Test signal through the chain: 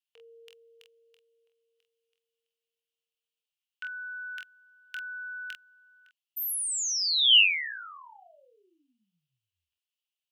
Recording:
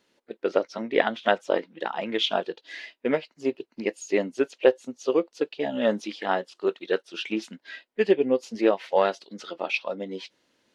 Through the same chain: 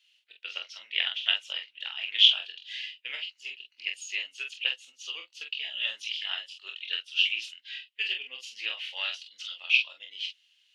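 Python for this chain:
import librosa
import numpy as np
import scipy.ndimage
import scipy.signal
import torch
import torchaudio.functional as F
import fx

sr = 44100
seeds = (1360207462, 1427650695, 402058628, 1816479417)

y = fx.highpass_res(x, sr, hz=2900.0, q=6.2)
y = fx.room_early_taps(y, sr, ms=(24, 46), db=(-6.5, -6.0))
y = F.gain(torch.from_numpy(y), -4.5).numpy()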